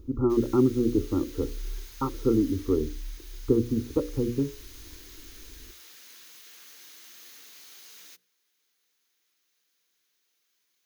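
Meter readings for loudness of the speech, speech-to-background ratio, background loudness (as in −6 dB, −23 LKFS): −27.0 LKFS, 19.5 dB, −46.5 LKFS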